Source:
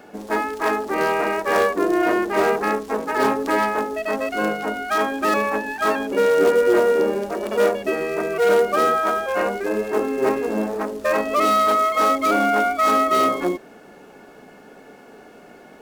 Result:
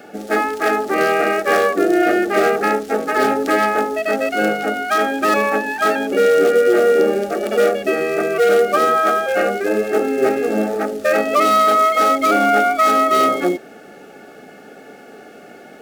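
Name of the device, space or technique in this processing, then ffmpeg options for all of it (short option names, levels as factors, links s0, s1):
PA system with an anti-feedback notch: -af "highpass=f=150:p=1,asuperstop=centerf=1000:order=20:qfactor=4.2,alimiter=limit=0.282:level=0:latency=1:release=117,volume=1.88"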